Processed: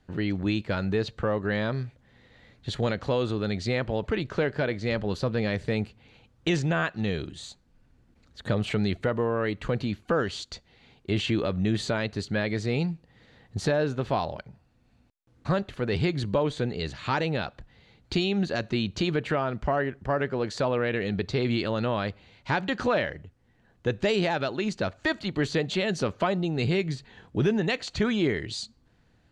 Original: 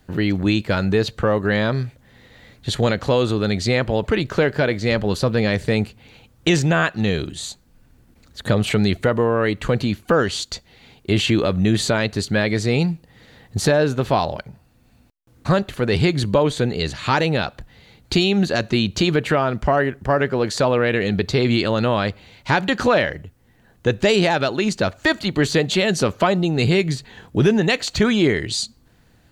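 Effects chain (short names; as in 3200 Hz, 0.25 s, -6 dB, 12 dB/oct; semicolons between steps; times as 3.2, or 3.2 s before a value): air absorption 68 m; gain -8 dB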